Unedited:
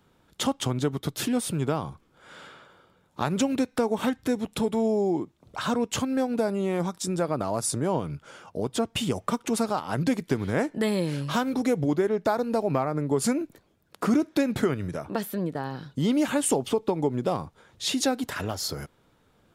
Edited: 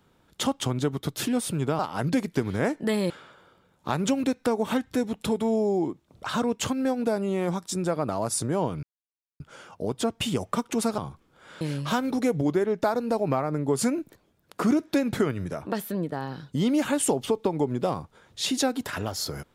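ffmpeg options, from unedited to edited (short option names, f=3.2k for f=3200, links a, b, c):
-filter_complex "[0:a]asplit=6[a][b][c][d][e][f];[a]atrim=end=1.792[g];[b]atrim=start=9.728:end=11.042[h];[c]atrim=start=2.418:end=8.15,asetpts=PTS-STARTPTS,afade=t=out:st=5.728:d=0.004:c=hsin,apad=pad_dur=0.57[i];[d]atrim=start=8.15:end=9.732,asetpts=PTS-STARTPTS,afade=t=in:d=0.004:c=hsin[j];[e]atrim=start=1.788:end=2.422[k];[f]atrim=start=11.038[l];[g][h]acrossfade=d=0.004:c1=hsin:c2=hsin[m];[i][j]concat=n=2:v=0:a=1[n];[m][n]acrossfade=d=0.004:c1=hsin:c2=hsin[o];[o][k]acrossfade=d=0.004:c1=hsin:c2=hsin[p];[p][l]acrossfade=d=0.004:c1=hsin:c2=hsin"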